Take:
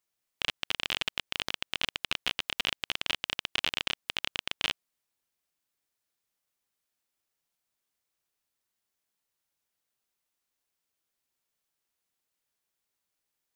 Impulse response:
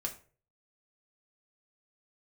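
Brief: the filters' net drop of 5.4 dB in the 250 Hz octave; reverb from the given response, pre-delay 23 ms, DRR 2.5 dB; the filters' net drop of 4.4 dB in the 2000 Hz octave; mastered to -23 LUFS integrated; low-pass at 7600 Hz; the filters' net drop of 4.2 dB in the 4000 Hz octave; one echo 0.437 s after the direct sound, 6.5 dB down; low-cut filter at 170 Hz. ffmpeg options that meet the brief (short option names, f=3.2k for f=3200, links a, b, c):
-filter_complex "[0:a]highpass=170,lowpass=7.6k,equalizer=f=250:t=o:g=-6,equalizer=f=2k:t=o:g=-4.5,equalizer=f=4k:t=o:g=-3.5,aecho=1:1:437:0.473,asplit=2[a][b];[1:a]atrim=start_sample=2205,adelay=23[c];[b][c]afir=irnorm=-1:irlink=0,volume=-3.5dB[d];[a][d]amix=inputs=2:normalize=0,volume=11dB"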